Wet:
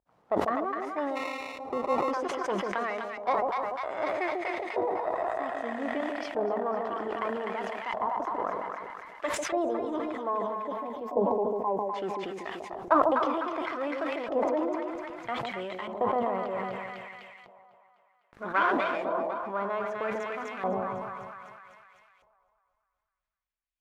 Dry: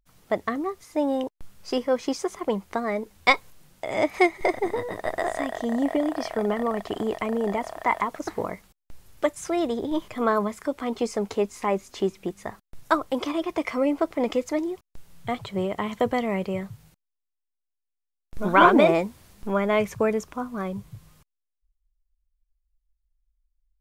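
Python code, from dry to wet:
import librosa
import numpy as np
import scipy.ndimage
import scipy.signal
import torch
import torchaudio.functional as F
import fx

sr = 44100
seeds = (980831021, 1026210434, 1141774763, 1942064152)

y = np.where(x < 0.0, 10.0 ** (-7.0 / 20.0) * x, x)
y = fx.spec_box(y, sr, start_s=10.18, length_s=1.75, low_hz=1100.0, high_hz=11000.0, gain_db=-21)
y = fx.echo_split(y, sr, split_hz=770.0, low_ms=146, high_ms=251, feedback_pct=52, wet_db=-4.5)
y = fx.dynamic_eq(y, sr, hz=2200.0, q=4.2, threshold_db=-46.0, ratio=4.0, max_db=-6)
y = fx.sample_hold(y, sr, seeds[0], rate_hz=1600.0, jitter_pct=0, at=(1.15, 2.1), fade=0.02)
y = fx.filter_lfo_bandpass(y, sr, shape='saw_up', hz=0.63, low_hz=750.0, high_hz=2500.0, q=1.4)
y = fx.rider(y, sr, range_db=5, speed_s=0.5)
y = fx.tilt_shelf(y, sr, db=4.5, hz=910.0)
y = fx.sustainer(y, sr, db_per_s=24.0)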